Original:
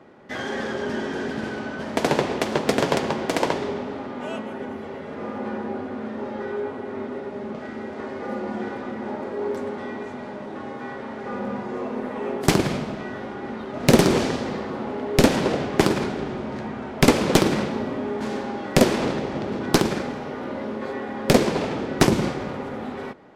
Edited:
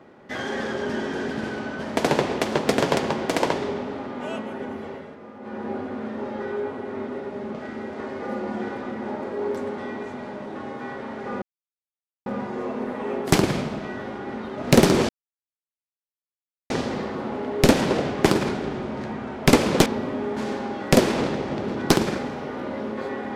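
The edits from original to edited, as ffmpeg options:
ffmpeg -i in.wav -filter_complex "[0:a]asplit=6[link_01][link_02][link_03][link_04][link_05][link_06];[link_01]atrim=end=5.19,asetpts=PTS-STARTPTS,afade=type=out:start_time=4.88:duration=0.31:silence=0.281838[link_07];[link_02]atrim=start=5.19:end=5.4,asetpts=PTS-STARTPTS,volume=-11dB[link_08];[link_03]atrim=start=5.4:end=11.42,asetpts=PTS-STARTPTS,afade=type=in:duration=0.31:silence=0.281838,afade=type=out:start_time=6.016:duration=0.004:curve=hsin,apad=pad_dur=0.84[link_09];[link_04]atrim=start=11.42:end=14.25,asetpts=PTS-STARTPTS,afade=type=in:duration=0.004:curve=hsin,afade=type=out:start_time=2.826:duration=0.004:curve=hsin,apad=pad_dur=1.61[link_10];[link_05]atrim=start=14.25:end=17.412,asetpts=PTS-STARTPTS,afade=type=in:duration=0.004:curve=hsin[link_11];[link_06]atrim=start=17.698[link_12];[link_07][link_08][link_09][link_10][link_11]concat=n=5:v=0:a=1[link_13];[link_13][link_12]acrossfade=duration=0.004:curve1=hsin:curve2=hsin" out.wav

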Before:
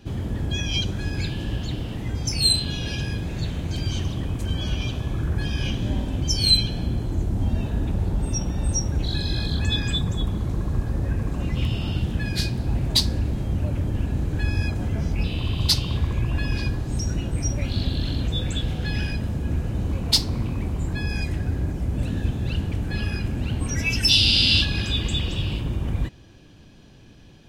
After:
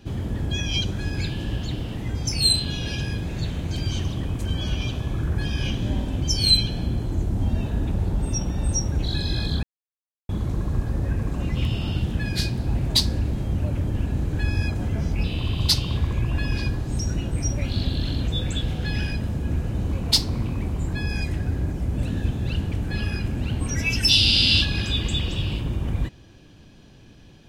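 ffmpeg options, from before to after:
ffmpeg -i in.wav -filter_complex "[0:a]asplit=3[link_01][link_02][link_03];[link_01]atrim=end=9.63,asetpts=PTS-STARTPTS,afade=type=out:start_time=9.626:duration=0.004:curve=hsin[link_04];[link_02]atrim=start=9.63:end=10.29,asetpts=PTS-STARTPTS,volume=0[link_05];[link_03]atrim=start=10.29,asetpts=PTS-STARTPTS,afade=type=in:duration=0.004:curve=hsin[link_06];[link_04][link_05][link_06]concat=n=3:v=0:a=1" out.wav

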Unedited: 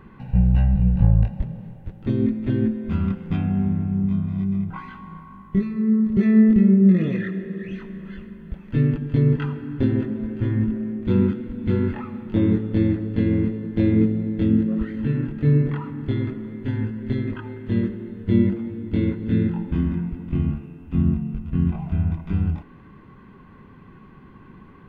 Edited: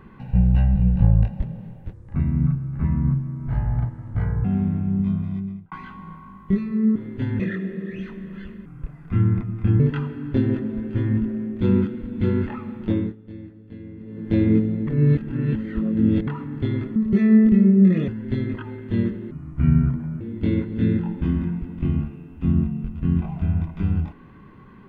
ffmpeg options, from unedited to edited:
ffmpeg -i in.wav -filter_complex "[0:a]asplit=16[link_01][link_02][link_03][link_04][link_05][link_06][link_07][link_08][link_09][link_10][link_11][link_12][link_13][link_14][link_15][link_16];[link_01]atrim=end=1.934[link_17];[link_02]atrim=start=1.93:end=3.49,asetpts=PTS-STARTPTS,asetrate=27342,aresample=44100,atrim=end_sample=110961,asetpts=PTS-STARTPTS[link_18];[link_03]atrim=start=3.486:end=4.76,asetpts=PTS-STARTPTS,afade=type=out:start_time=0.754:duration=0.52[link_19];[link_04]atrim=start=4.76:end=6.002,asetpts=PTS-STARTPTS,afade=type=in:duration=0.004:curve=hsin[link_20];[link_05]atrim=start=16.418:end=16.862[link_21];[link_06]atrim=start=7.118:end=8.384[link_22];[link_07]atrim=start=8.38:end=9.26,asetpts=PTS-STARTPTS,asetrate=33957,aresample=44100[link_23];[link_08]atrim=start=9.256:end=12.62,asetpts=PTS-STARTPTS,afade=type=out:start_time=3.054:duration=0.31:silence=0.11885[link_24];[link_09]atrim=start=12.62:end=13.46,asetpts=PTS-STARTPTS,volume=-18.5dB[link_25];[link_10]atrim=start=13.46:end=14.332,asetpts=PTS-STARTPTS,afade=type=in:duration=0.31:silence=0.11885[link_26];[link_11]atrim=start=14.328:end=15.732,asetpts=PTS-STARTPTS,areverse[link_27];[link_12]atrim=start=15.728:end=16.422[link_28];[link_13]atrim=start=5.998:end=7.122[link_29];[link_14]atrim=start=16.858:end=18.094[link_30];[link_15]atrim=start=18.09:end=18.71,asetpts=PTS-STARTPTS,asetrate=30429,aresample=44100,atrim=end_sample=39626,asetpts=PTS-STARTPTS[link_31];[link_16]atrim=start=18.706[link_32];[link_17][link_18]acrossfade=duration=0.004:curve1=hsin:curve2=hsin[link_33];[link_19][link_20]concat=n=2:v=0:a=1[link_34];[link_33][link_34]acrossfade=duration=0.004:curve1=hsin:curve2=hsin[link_35];[link_35][link_21]acrossfade=duration=0.004:curve1=hsin:curve2=hsin[link_36];[link_36][link_22]acrossfade=duration=0.004:curve1=hsin:curve2=hsin[link_37];[link_37][link_23]acrossfade=duration=0.004:curve1=hsin:curve2=hsin[link_38];[link_24][link_25][link_26]concat=n=3:v=0:a=1[link_39];[link_38][link_39]acrossfade=duration=0.004:curve1=hsin:curve2=hsin[link_40];[link_40][link_27]acrossfade=duration=0.004:curve1=hsin:curve2=hsin[link_41];[link_41][link_28]acrossfade=duration=0.004:curve1=hsin:curve2=hsin[link_42];[link_42][link_29]acrossfade=duration=0.004:curve1=hsin:curve2=hsin[link_43];[link_43][link_30]acrossfade=duration=0.004:curve1=hsin:curve2=hsin[link_44];[link_44][link_31]acrossfade=duration=0.004:curve1=hsin:curve2=hsin[link_45];[link_45][link_32]acrossfade=duration=0.004:curve1=hsin:curve2=hsin" out.wav

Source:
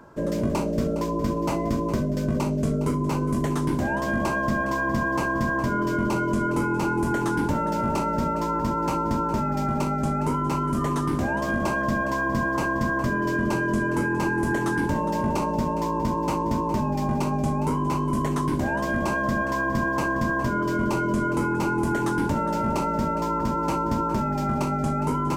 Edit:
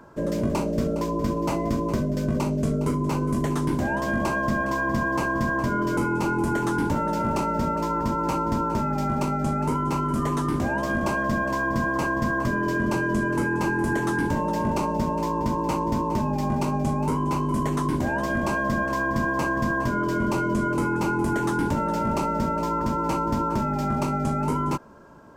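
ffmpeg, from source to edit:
ffmpeg -i in.wav -filter_complex "[0:a]asplit=2[link_01][link_02];[link_01]atrim=end=5.972[link_03];[link_02]atrim=start=6.558[link_04];[link_03][link_04]acrossfade=duration=0.004:curve1=hsin:curve2=hsin" out.wav

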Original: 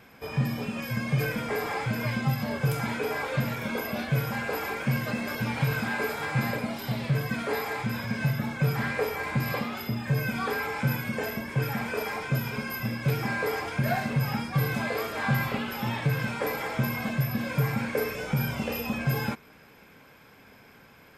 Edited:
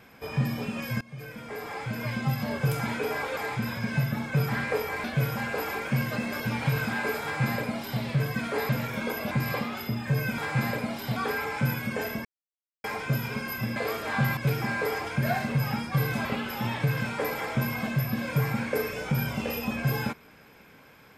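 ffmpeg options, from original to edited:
ffmpeg -i in.wav -filter_complex "[0:a]asplit=13[link_01][link_02][link_03][link_04][link_05][link_06][link_07][link_08][link_09][link_10][link_11][link_12][link_13];[link_01]atrim=end=1.01,asetpts=PTS-STARTPTS,afade=type=out:start_time=1.006:duration=0.004:curve=hsin:silence=0.0749894[link_14];[link_02]atrim=start=1.01:end=3.372,asetpts=PTS-STARTPTS,afade=type=in:duration=1.46:silence=0.0749894[link_15];[link_03]atrim=start=7.638:end=9.312[link_16];[link_04]atrim=start=3.988:end=7.642[link_17];[link_05]atrim=start=3.368:end=3.992[link_18];[link_06]atrim=start=9.308:end=10.382[link_19];[link_07]atrim=start=6.178:end=6.962[link_20];[link_08]atrim=start=10.378:end=11.47,asetpts=PTS-STARTPTS,afade=type=out:start_time=1.088:duration=0.004:curve=hsin[link_21];[link_09]atrim=start=11.47:end=12.06,asetpts=PTS-STARTPTS,volume=0[link_22];[link_10]atrim=start=12.06:end=12.982,asetpts=PTS-STARTPTS,afade=type=in:duration=0.004:curve=hsin[link_23];[link_11]atrim=start=14.858:end=15.472[link_24];[link_12]atrim=start=12.978:end=14.862[link_25];[link_13]atrim=start=15.468[link_26];[link_14][link_15]concat=n=2:v=0:a=1[link_27];[link_27][link_16]acrossfade=duration=0.004:curve1=hsin:curve2=hsin[link_28];[link_28][link_17]acrossfade=duration=0.004:curve1=hsin:curve2=hsin[link_29];[link_29][link_18]acrossfade=duration=0.004:curve1=hsin:curve2=hsin[link_30];[link_30][link_19]acrossfade=duration=0.004:curve1=hsin:curve2=hsin[link_31];[link_31][link_20]acrossfade=duration=0.004:curve1=hsin:curve2=hsin[link_32];[link_21][link_22][link_23]concat=n=3:v=0:a=1[link_33];[link_32][link_33]acrossfade=duration=0.004:curve1=hsin:curve2=hsin[link_34];[link_34][link_24]acrossfade=duration=0.004:curve1=hsin:curve2=hsin[link_35];[link_35][link_25]acrossfade=duration=0.004:curve1=hsin:curve2=hsin[link_36];[link_36][link_26]acrossfade=duration=0.004:curve1=hsin:curve2=hsin" out.wav

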